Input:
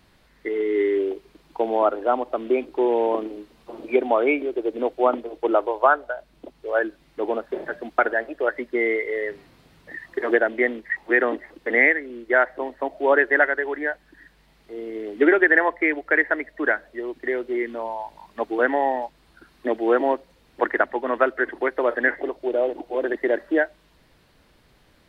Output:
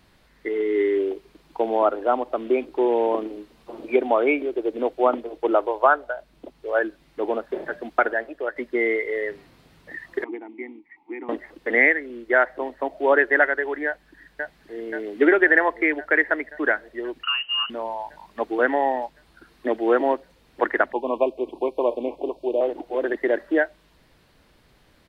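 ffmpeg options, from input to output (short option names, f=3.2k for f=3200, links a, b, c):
-filter_complex "[0:a]asettb=1/sr,asplit=3[a][b][c];[a]atrim=end=10.244[d];[b]atrim=start=10.24:end=11.29,asetpts=PTS-STARTPTS,afade=t=in:d=0.004:c=qsin,afade=t=out:st=1.046:d=0.004:c=qsin,asplit=3[e][f][g];[e]bandpass=f=300:t=q:w=8,volume=0dB[h];[f]bandpass=f=870:t=q:w=8,volume=-6dB[i];[g]bandpass=f=2.24k:t=q:w=8,volume=-9dB[j];[h][i][j]amix=inputs=3:normalize=0[k];[c]atrim=start=11.286[l];[d][k]acrossfade=d=0.004:c1=hsin:c2=qsin[m];[m][l]acrossfade=d=0.004:c1=qsin:c2=hsin,asplit=2[n][o];[o]afade=t=in:st=13.86:d=0.01,afade=t=out:st=14.76:d=0.01,aecho=0:1:530|1060|1590|2120|2650|3180|3710|4240|4770|5300|5830|6360:0.668344|0.467841|0.327489|0.229242|0.160469|0.112329|0.07863|0.055041|0.0385287|0.0269701|0.0188791|0.0132153[p];[n][p]amix=inputs=2:normalize=0,asettb=1/sr,asplit=3[q][r][s];[q]atrim=end=17.234[t];[r]atrim=start=17.23:end=17.7,asetpts=PTS-STARTPTS,afade=t=in:d=0.004:c=qsin,afade=t=out:st=0.466:d=0.004:c=qsin,lowpass=f=2.7k:t=q:w=0.5098,lowpass=f=2.7k:t=q:w=0.6013,lowpass=f=2.7k:t=q:w=0.9,lowpass=f=2.7k:t=q:w=2.563,afreqshift=-3200[u];[s]atrim=start=17.696[v];[t][u]acrossfade=d=0.004:c1=hsin:c2=qsin[w];[w][v]acrossfade=d=0.004:c1=qsin:c2=hsin,asettb=1/sr,asplit=3[x][y][z];[x]atrim=end=20.924[aa];[y]atrim=start=20.92:end=22.61,asetpts=PTS-STARTPTS,afade=t=in:d=0.004:c=qsin,afade=t=out:st=1.686:d=0.004:c=qsin,asuperstop=centerf=1600:order=20:qfactor=1.3[ab];[z]atrim=start=22.606[ac];[aa][ab]acrossfade=d=0.004:c1=hsin:c2=qsin[ad];[ad][ac]acrossfade=d=0.004:c1=qsin:c2=hsin,asplit=2[ae][af];[ae]atrim=end=8.56,asetpts=PTS-STARTPTS,afade=t=out:st=7.98:d=0.58:silence=0.473151[ag];[af]atrim=start=8.56,asetpts=PTS-STARTPTS,afade=t=in:d=0.004:c=hsin:silence=0.473151[ah];[ag][ah]concat=n=2:v=0:a=1"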